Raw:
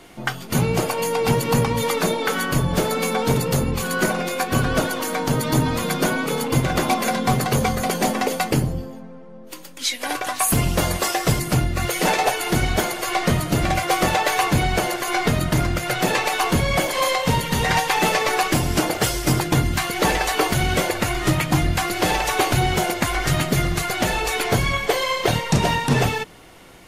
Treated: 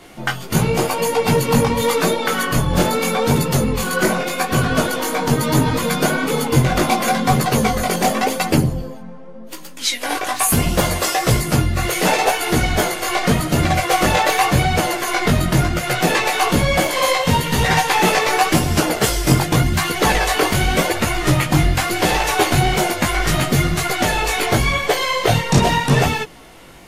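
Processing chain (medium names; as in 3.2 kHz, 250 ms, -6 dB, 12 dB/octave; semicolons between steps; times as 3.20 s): chorus voices 2, 0.88 Hz, delay 17 ms, depth 4.9 ms; trim +6.5 dB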